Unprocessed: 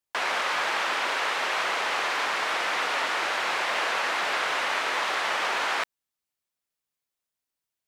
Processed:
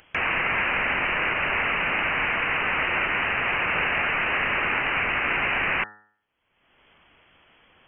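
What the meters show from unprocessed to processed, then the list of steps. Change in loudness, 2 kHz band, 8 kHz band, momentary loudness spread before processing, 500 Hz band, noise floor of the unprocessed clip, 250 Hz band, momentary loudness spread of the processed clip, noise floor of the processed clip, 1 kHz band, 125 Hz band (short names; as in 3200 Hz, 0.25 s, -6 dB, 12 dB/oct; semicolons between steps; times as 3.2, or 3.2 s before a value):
+3.0 dB, +4.5 dB, under -35 dB, 1 LU, +0.5 dB, under -85 dBFS, +8.5 dB, 1 LU, -70 dBFS, -0.5 dB, n/a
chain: inverted band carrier 3300 Hz; upward compressor, threshold -34 dBFS; de-hum 105.5 Hz, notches 18; gain +3 dB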